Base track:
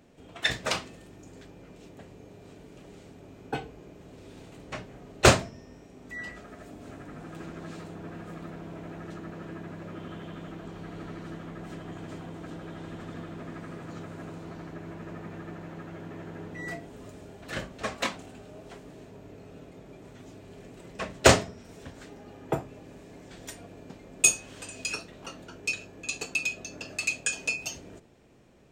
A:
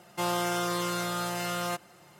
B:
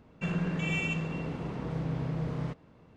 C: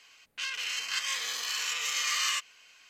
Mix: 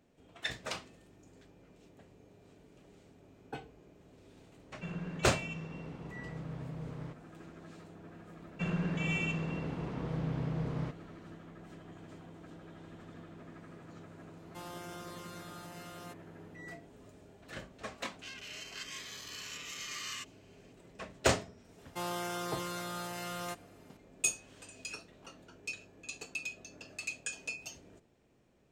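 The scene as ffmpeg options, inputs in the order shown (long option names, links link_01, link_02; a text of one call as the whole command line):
ffmpeg -i bed.wav -i cue0.wav -i cue1.wav -i cue2.wav -filter_complex "[2:a]asplit=2[link_01][link_02];[1:a]asplit=2[link_03][link_04];[0:a]volume=-10.5dB[link_05];[link_01]atrim=end=2.96,asetpts=PTS-STARTPTS,volume=-9.5dB,afade=type=in:duration=0.004:curve=hsin,afade=type=out:start_time=2.956:duration=0.004:curve=hsin,adelay=4600[link_06];[link_02]atrim=end=2.96,asetpts=PTS-STARTPTS,volume=-2.5dB,afade=type=in:duration=0.004:curve=hsin,afade=type=out:start_time=2.956:duration=0.004:curve=hsin,adelay=8380[link_07];[link_03]atrim=end=2.19,asetpts=PTS-STARTPTS,volume=-17.5dB,afade=type=in:duration=0.004:curve=hsin,afade=type=out:start_time=2.186:duration=0.004:curve=hsin,adelay=14370[link_08];[3:a]atrim=end=2.89,asetpts=PTS-STARTPTS,volume=-12.5dB,afade=type=in:duration=0.004:curve=hsin,afade=type=out:start_time=2.886:duration=0.004:curve=hsin,adelay=17840[link_09];[link_04]atrim=end=2.19,asetpts=PTS-STARTPTS,volume=-8.5dB,afade=type=in:duration=0.004:curve=hsin,afade=type=out:start_time=2.186:duration=0.004:curve=hsin,adelay=21780[link_10];[link_05][link_06][link_07][link_08][link_09][link_10]amix=inputs=6:normalize=0" out.wav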